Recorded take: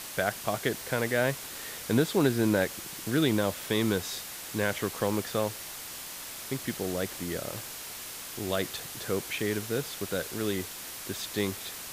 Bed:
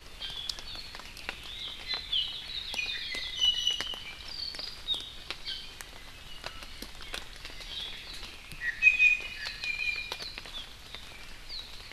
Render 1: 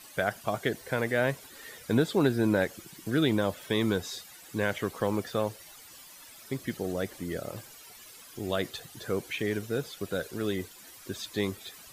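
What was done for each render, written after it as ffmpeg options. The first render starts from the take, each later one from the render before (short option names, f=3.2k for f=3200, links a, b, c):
-af "afftdn=nr=14:nf=-41"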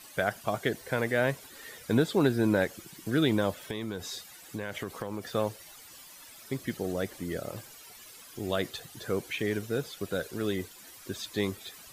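-filter_complex "[0:a]asettb=1/sr,asplit=3[a][b][c];[a]atrim=end=3.664[d];[b]atrim=start=3.66:end=5.29,asetpts=PTS-STARTPTS,afade=t=in:d=0.004:c=qsin,afade=t=out:st=1.626:d=0.004:c=qsin,acompressor=threshold=-30dB:ratio=10:attack=3.2:release=140:knee=1:detection=peak[e];[c]atrim=start=5.286[f];[d][e]acrossfade=d=0.004:c1=hsin:c2=qsin[g];[g][f]acrossfade=d=0.004:c1=qsin:c2=hsin"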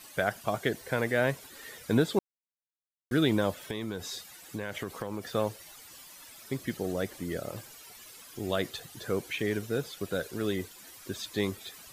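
-filter_complex "[0:a]asplit=3[a][b][c];[a]atrim=end=2.19,asetpts=PTS-STARTPTS,afade=t=out:st=2.186:d=0.004:c=hsin[d];[b]atrim=start=2.19:end=3.11,asetpts=PTS-STARTPTS,volume=0[e];[c]atrim=start=3.11,asetpts=PTS-STARTPTS,afade=t=in:d=0.004:c=hsin[f];[d][e][f]concat=n=3:v=0:a=1"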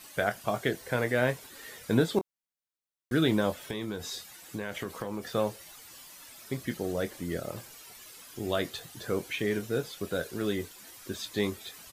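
-filter_complex "[0:a]asplit=2[a][b];[b]adelay=24,volume=-10dB[c];[a][c]amix=inputs=2:normalize=0"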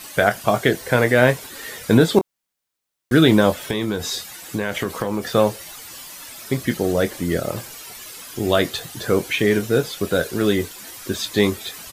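-af "volume=12dB,alimiter=limit=-2dB:level=0:latency=1"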